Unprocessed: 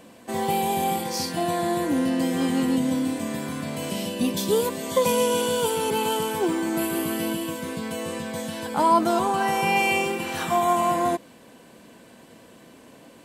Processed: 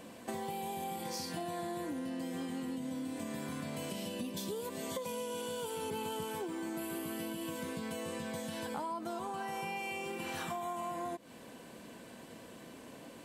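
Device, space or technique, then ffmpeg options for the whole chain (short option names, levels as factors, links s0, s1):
serial compression, leveller first: -filter_complex "[0:a]acompressor=threshold=0.0398:ratio=2,acompressor=threshold=0.0178:ratio=6,asettb=1/sr,asplit=3[s0][s1][s2];[s0]atrim=end=5.824[s3];[s1]atrim=start=5.82:end=6.24,asetpts=PTS-STARTPTS,afade=t=in:d=0.004:c=qsin,afade=t=out:st=0.416:d=0.004:c=qsin,lowshelf=f=140:g=10.5[s4];[s2]atrim=start=6.236[s5];[s3][s4]acrossfade=d=0.004:c1=hsin:c2=qsin[s6];[s6][s5]acrossfade=d=0.004:c1=qsin:c2=hsin,volume=0.794"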